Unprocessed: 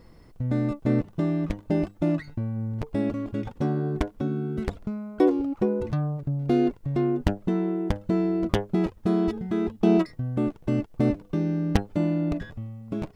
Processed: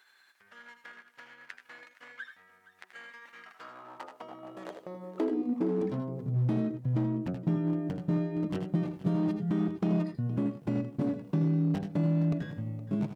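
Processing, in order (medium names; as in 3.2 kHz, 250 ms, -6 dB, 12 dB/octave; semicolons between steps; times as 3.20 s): pitch bend over the whole clip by -4 st ending unshifted; compression 4:1, threshold -30 dBFS, peak gain reduction 12.5 dB; multi-tap echo 81/97/468 ms -10/-15/-17.5 dB; overload inside the chain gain 27 dB; high-pass sweep 1.7 kHz -> 150 Hz, 3.30–6.38 s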